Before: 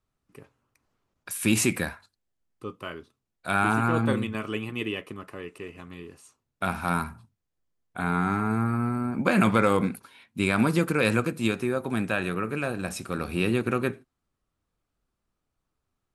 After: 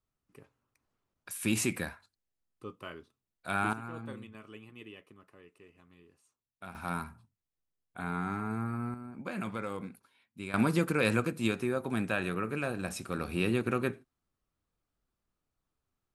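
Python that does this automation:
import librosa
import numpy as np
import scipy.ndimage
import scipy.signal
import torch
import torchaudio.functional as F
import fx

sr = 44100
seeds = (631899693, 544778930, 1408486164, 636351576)

y = fx.gain(x, sr, db=fx.steps((0.0, -7.0), (3.73, -18.0), (6.75, -9.0), (8.94, -16.0), (10.54, -4.5)))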